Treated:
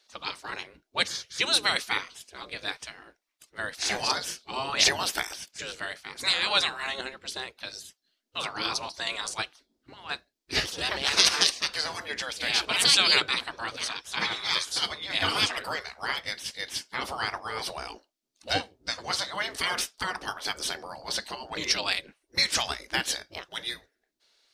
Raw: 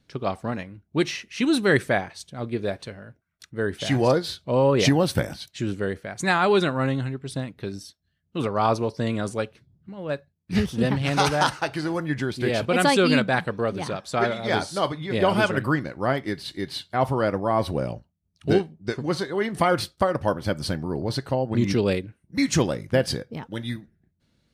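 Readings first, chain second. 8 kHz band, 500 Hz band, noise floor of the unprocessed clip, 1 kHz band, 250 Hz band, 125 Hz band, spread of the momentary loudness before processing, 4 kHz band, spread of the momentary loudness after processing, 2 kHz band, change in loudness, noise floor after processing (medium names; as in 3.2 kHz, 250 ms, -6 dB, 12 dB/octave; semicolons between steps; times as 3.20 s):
+5.5 dB, -15.0 dB, -72 dBFS, -6.5 dB, -19.0 dB, -20.0 dB, 13 LU, +7.0 dB, 15 LU, -1.0 dB, -3.0 dB, -79 dBFS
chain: spectral gate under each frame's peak -15 dB weak; peaking EQ 4.8 kHz +9 dB 1.4 oct; trim +2.5 dB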